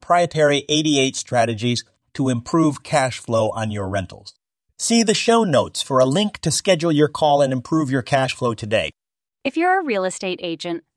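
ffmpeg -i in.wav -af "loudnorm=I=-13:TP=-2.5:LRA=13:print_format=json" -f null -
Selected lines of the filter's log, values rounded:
"input_i" : "-19.9",
"input_tp" : "-1.5",
"input_lra" : "4.5",
"input_thresh" : "-30.1",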